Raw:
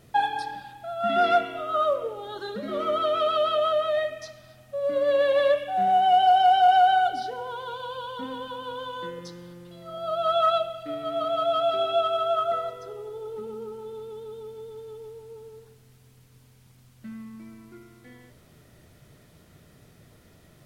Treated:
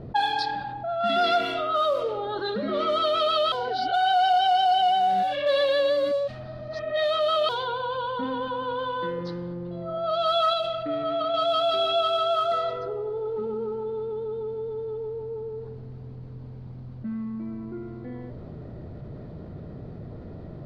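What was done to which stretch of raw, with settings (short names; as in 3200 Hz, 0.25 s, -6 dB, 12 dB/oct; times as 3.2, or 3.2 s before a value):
3.52–7.49 reverse
10.53–11.34 compressor, threshold -26 dBFS
whole clip: bell 4400 Hz +14 dB 0.68 oct; low-pass opened by the level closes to 610 Hz, open at -20 dBFS; fast leveller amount 50%; gain -4 dB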